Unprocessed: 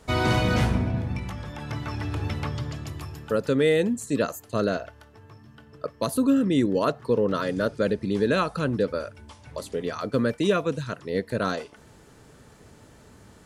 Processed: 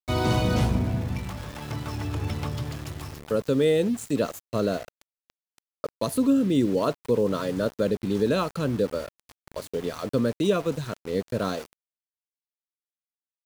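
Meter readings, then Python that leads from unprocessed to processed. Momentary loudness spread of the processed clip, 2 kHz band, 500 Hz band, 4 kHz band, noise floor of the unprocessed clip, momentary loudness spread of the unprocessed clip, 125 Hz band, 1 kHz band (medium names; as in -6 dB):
13 LU, -5.5 dB, -0.5 dB, -1.0 dB, -53 dBFS, 13 LU, 0.0 dB, -2.5 dB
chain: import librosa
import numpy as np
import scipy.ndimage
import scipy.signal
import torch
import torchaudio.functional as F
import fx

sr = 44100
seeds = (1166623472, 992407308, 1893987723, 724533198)

y = fx.dynamic_eq(x, sr, hz=1800.0, q=1.4, threshold_db=-45.0, ratio=4.0, max_db=-8)
y = np.where(np.abs(y) >= 10.0 ** (-37.0 / 20.0), y, 0.0)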